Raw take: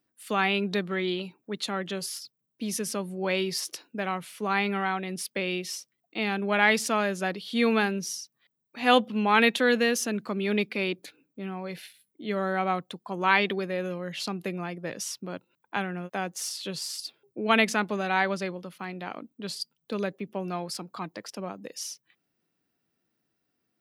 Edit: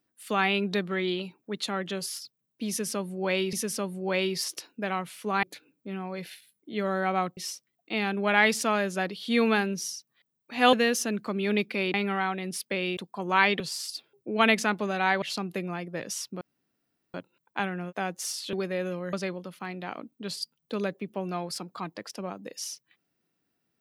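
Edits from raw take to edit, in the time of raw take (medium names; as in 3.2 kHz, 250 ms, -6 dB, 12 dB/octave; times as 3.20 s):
2.69–3.53 s: loop, 2 plays
4.59–5.62 s: swap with 10.95–12.89 s
8.98–9.74 s: delete
13.52–14.12 s: swap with 16.70–18.32 s
15.31 s: insert room tone 0.73 s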